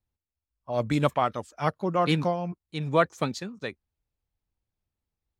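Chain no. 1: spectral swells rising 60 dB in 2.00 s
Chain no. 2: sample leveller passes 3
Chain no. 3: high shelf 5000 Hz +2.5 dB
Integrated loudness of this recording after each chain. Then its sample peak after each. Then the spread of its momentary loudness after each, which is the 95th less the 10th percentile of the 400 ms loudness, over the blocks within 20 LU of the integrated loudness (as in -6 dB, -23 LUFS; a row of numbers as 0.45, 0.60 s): -23.0, -19.5, -27.5 LUFS; -5.5, -7.5, -7.5 dBFS; 13, 8, 10 LU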